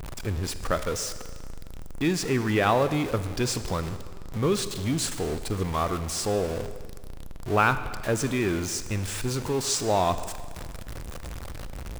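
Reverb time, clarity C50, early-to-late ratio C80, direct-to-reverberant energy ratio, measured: 1.9 s, 11.5 dB, 12.5 dB, 11.0 dB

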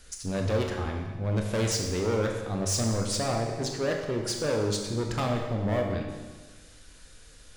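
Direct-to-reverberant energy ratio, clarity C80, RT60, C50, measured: 1.5 dB, 5.5 dB, 1.4 s, 4.0 dB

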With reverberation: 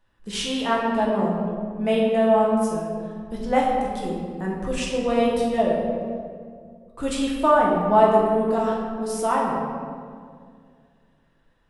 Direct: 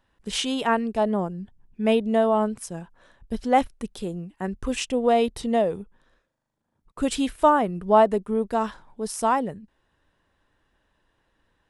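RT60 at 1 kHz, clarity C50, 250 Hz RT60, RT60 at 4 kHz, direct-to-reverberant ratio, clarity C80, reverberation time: 1.9 s, 0.5 dB, 2.5 s, 1.1 s, -4.5 dB, 2.0 dB, 2.1 s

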